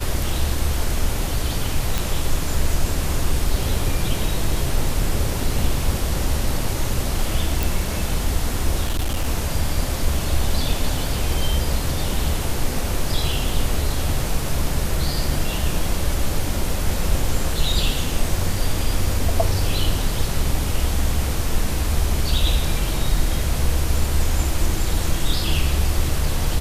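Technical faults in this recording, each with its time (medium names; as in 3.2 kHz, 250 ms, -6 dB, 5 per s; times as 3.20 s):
1.98 s: pop
7.63 s: pop
8.85–9.26 s: clipped -17 dBFS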